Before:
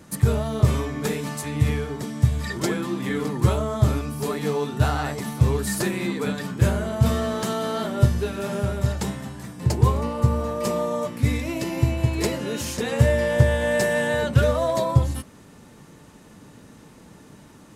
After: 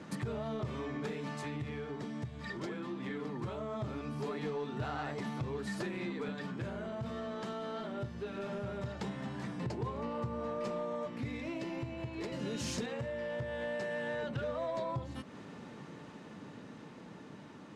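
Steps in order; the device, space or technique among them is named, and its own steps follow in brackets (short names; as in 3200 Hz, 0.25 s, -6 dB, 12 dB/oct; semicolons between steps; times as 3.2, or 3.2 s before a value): AM radio (BPF 140–3900 Hz; compressor 4:1, threshold -36 dBFS, peak gain reduction 18 dB; soft clip -29 dBFS, distortion -19 dB; tremolo 0.2 Hz, depth 29%); 12.32–12.86 tone controls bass +8 dB, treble +11 dB; gain +1 dB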